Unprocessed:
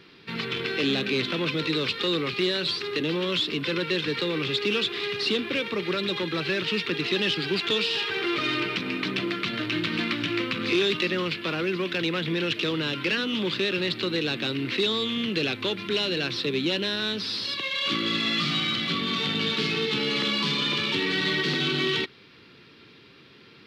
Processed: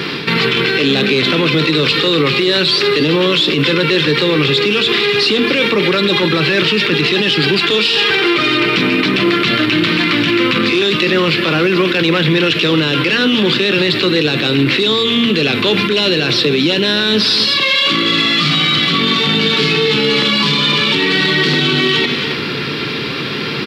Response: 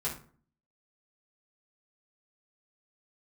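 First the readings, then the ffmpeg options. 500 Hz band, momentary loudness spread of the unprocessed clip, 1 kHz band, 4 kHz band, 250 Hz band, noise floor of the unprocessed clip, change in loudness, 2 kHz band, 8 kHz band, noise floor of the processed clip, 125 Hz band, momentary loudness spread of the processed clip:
+13.5 dB, 4 LU, +14.0 dB, +13.5 dB, +13.5 dB, -52 dBFS, +13.5 dB, +14.0 dB, +12.5 dB, -20 dBFS, +15.0 dB, 2 LU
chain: -filter_complex "[0:a]highpass=110,bandreject=f=6200:w=21,bandreject=f=230.5:t=h:w=4,bandreject=f=461:t=h:w=4,bandreject=f=691.5:t=h:w=4,bandreject=f=922:t=h:w=4,bandreject=f=1152.5:t=h:w=4,bandreject=f=1383:t=h:w=4,bandreject=f=1613.5:t=h:w=4,bandreject=f=1844:t=h:w=4,bandreject=f=2074.5:t=h:w=4,bandreject=f=2305:t=h:w=4,bandreject=f=2535.5:t=h:w=4,bandreject=f=2766:t=h:w=4,bandreject=f=2996.5:t=h:w=4,bandreject=f=3227:t=h:w=4,bandreject=f=3457.5:t=h:w=4,bandreject=f=3688:t=h:w=4,bandreject=f=3918.5:t=h:w=4,bandreject=f=4149:t=h:w=4,bandreject=f=4379.5:t=h:w=4,bandreject=f=4610:t=h:w=4,bandreject=f=4840.5:t=h:w=4,bandreject=f=5071:t=h:w=4,bandreject=f=5301.5:t=h:w=4,bandreject=f=5532:t=h:w=4,bandreject=f=5762.5:t=h:w=4,bandreject=f=5993:t=h:w=4,bandreject=f=6223.5:t=h:w=4,bandreject=f=6454:t=h:w=4,bandreject=f=6684.5:t=h:w=4,bandreject=f=6915:t=h:w=4,bandreject=f=7145.5:t=h:w=4,bandreject=f=7376:t=h:w=4,areverse,acompressor=threshold=0.0126:ratio=4,areverse,aecho=1:1:272:0.168,asplit=2[s0][s1];[1:a]atrim=start_sample=2205[s2];[s1][s2]afir=irnorm=-1:irlink=0,volume=0.133[s3];[s0][s3]amix=inputs=2:normalize=0,alimiter=level_in=56.2:limit=0.891:release=50:level=0:latency=1,volume=0.631"

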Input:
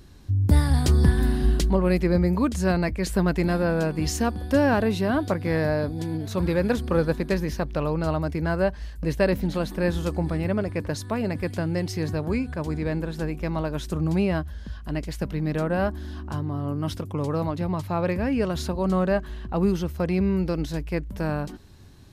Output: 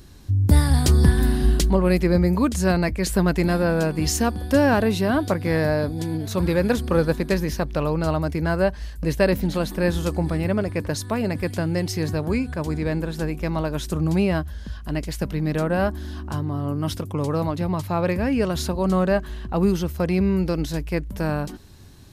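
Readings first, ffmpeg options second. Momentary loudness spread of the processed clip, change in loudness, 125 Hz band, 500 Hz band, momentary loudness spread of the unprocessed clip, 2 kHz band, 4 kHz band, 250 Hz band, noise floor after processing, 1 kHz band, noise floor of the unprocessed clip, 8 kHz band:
8 LU, +2.5 dB, +2.5 dB, +2.5 dB, 8 LU, +3.0 dB, +4.5 dB, +2.5 dB, -36 dBFS, +2.5 dB, -39 dBFS, +6.5 dB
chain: -af "highshelf=f=5600:g=6,volume=1.33"

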